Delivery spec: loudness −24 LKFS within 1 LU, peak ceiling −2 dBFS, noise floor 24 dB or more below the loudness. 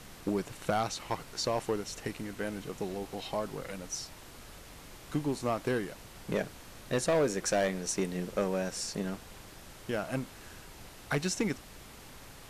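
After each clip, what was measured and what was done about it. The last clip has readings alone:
share of clipped samples 0.7%; peaks flattened at −22.5 dBFS; background noise floor −51 dBFS; target noise floor −58 dBFS; integrated loudness −34.0 LKFS; sample peak −22.5 dBFS; target loudness −24.0 LKFS
→ clipped peaks rebuilt −22.5 dBFS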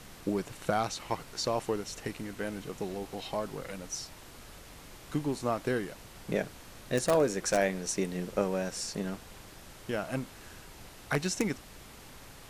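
share of clipped samples 0.0%; background noise floor −51 dBFS; target noise floor −58 dBFS
→ noise reduction from a noise print 7 dB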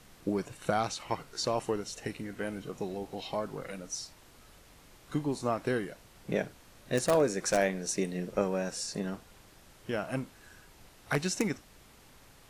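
background noise floor −58 dBFS; integrated loudness −33.5 LKFS; sample peak −13.5 dBFS; target loudness −24.0 LKFS
→ level +9.5 dB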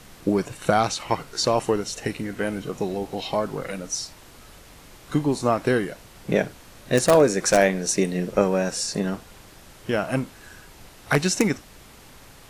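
integrated loudness −24.0 LKFS; sample peak −4.0 dBFS; background noise floor −48 dBFS

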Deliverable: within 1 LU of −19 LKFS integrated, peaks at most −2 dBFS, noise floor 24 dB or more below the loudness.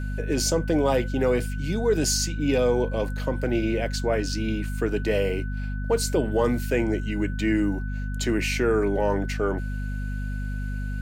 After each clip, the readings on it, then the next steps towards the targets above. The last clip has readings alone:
mains hum 50 Hz; hum harmonics up to 250 Hz; level of the hum −27 dBFS; interfering tone 1,500 Hz; level of the tone −41 dBFS; integrated loudness −25.5 LKFS; sample peak −11.5 dBFS; target loudness −19.0 LKFS
→ hum removal 50 Hz, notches 5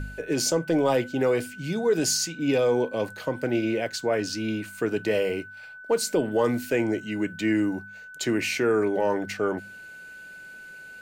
mains hum none found; interfering tone 1,500 Hz; level of the tone −41 dBFS
→ notch filter 1,500 Hz, Q 30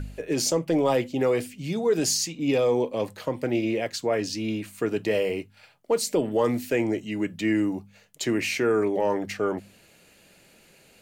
interfering tone none found; integrated loudness −26.0 LKFS; sample peak −12.0 dBFS; target loudness −19.0 LKFS
→ level +7 dB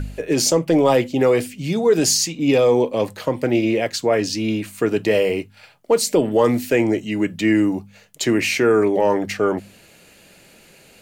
integrated loudness −19.0 LKFS; sample peak −5.0 dBFS; background noise floor −50 dBFS

